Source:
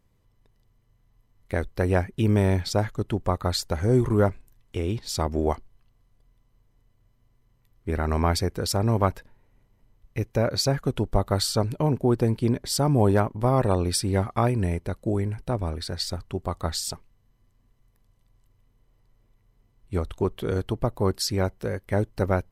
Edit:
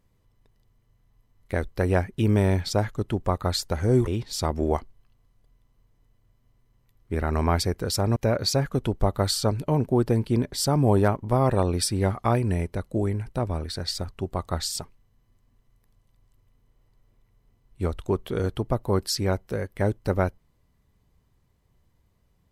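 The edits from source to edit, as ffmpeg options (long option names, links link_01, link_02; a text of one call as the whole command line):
ffmpeg -i in.wav -filter_complex "[0:a]asplit=3[link_01][link_02][link_03];[link_01]atrim=end=4.072[link_04];[link_02]atrim=start=4.828:end=8.922[link_05];[link_03]atrim=start=10.278[link_06];[link_04][link_05]acrossfade=duration=0.004:curve1=hsin:curve2=hsin[link_07];[link_07][link_06]acrossfade=duration=0.004:curve1=hsin:curve2=hsin" out.wav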